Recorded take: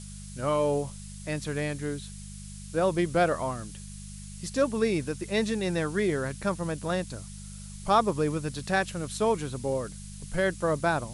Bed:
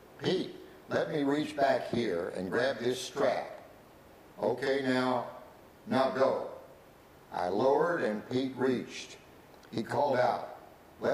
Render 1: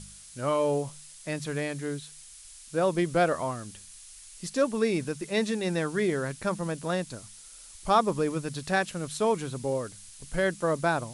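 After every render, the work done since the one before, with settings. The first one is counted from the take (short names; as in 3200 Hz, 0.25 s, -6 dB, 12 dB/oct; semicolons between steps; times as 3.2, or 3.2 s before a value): de-hum 50 Hz, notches 4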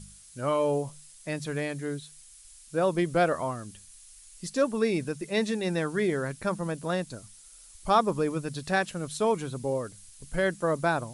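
denoiser 6 dB, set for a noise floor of -49 dBFS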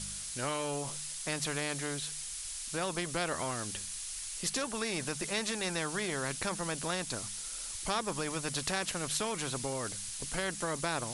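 compressor 2:1, threshold -30 dBFS, peak gain reduction 7.5 dB; spectral compressor 2:1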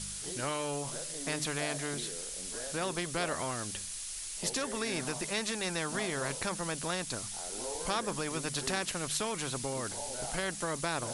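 add bed -15 dB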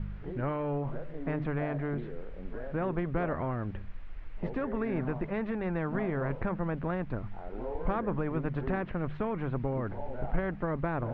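LPF 2100 Hz 24 dB/oct; tilt -3 dB/oct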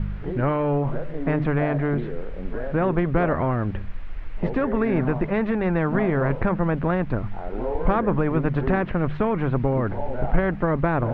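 gain +10 dB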